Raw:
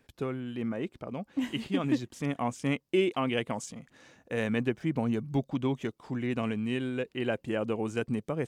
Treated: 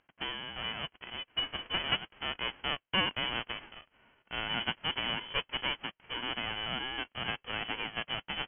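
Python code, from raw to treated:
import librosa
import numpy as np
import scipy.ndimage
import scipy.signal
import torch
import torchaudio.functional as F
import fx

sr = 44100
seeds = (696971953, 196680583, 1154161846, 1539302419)

y = fx.envelope_flatten(x, sr, power=0.1)
y = fx.freq_invert(y, sr, carrier_hz=3200)
y = fx.env_lowpass(y, sr, base_hz=2300.0, full_db=-32.5)
y = F.gain(torch.from_numpy(y), -1.5).numpy()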